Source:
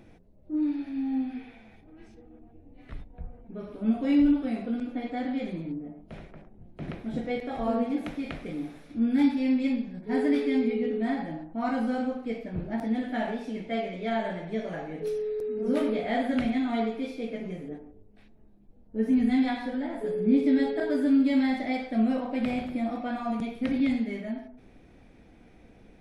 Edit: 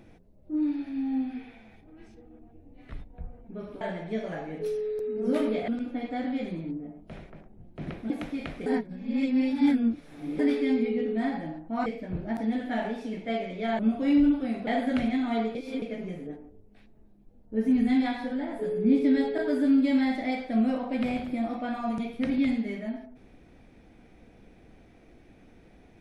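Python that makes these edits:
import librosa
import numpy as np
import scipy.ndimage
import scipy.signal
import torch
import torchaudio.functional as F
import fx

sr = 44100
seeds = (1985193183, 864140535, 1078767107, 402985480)

y = fx.edit(x, sr, fx.swap(start_s=3.81, length_s=0.88, other_s=14.22, other_length_s=1.87),
    fx.cut(start_s=7.11, length_s=0.84),
    fx.reverse_span(start_s=8.51, length_s=1.73),
    fx.cut(start_s=11.71, length_s=0.58),
    fx.reverse_span(start_s=16.97, length_s=0.27), tone=tone)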